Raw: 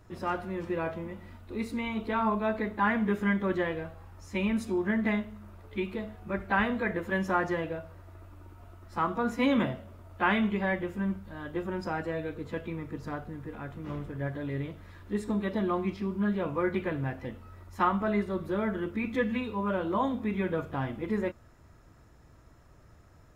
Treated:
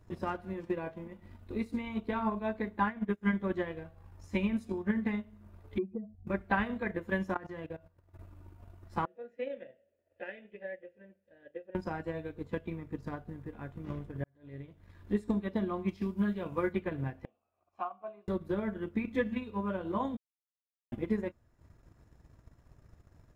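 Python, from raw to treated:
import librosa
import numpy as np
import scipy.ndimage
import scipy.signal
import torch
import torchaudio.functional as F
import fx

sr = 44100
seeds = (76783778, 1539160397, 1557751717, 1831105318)

y = fx.peak_eq(x, sr, hz=69.0, db=-14.5, octaves=0.77, at=(0.53, 1.22))
y = fx.upward_expand(y, sr, threshold_db=-37.0, expansion=2.5, at=(2.83, 3.33))
y = fx.notch_comb(y, sr, f0_hz=330.0, at=(4.72, 5.27))
y = fx.spec_expand(y, sr, power=2.8, at=(5.78, 6.27))
y = fx.level_steps(y, sr, step_db=12, at=(7.34, 8.19))
y = fx.vowel_filter(y, sr, vowel='e', at=(9.05, 11.75))
y = fx.high_shelf(y, sr, hz=2900.0, db=8.5, at=(15.88, 16.73))
y = fx.vowel_filter(y, sr, vowel='a', at=(17.25, 18.28))
y = fx.edit(y, sr, fx.fade_in_span(start_s=14.24, length_s=0.95),
    fx.silence(start_s=20.17, length_s=0.75), tone=tone)
y = fx.low_shelf(y, sr, hz=370.0, db=4.5)
y = fx.notch(y, sr, hz=1300.0, q=14.0)
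y = fx.transient(y, sr, attack_db=8, sustain_db=-7)
y = y * librosa.db_to_amplitude(-8.0)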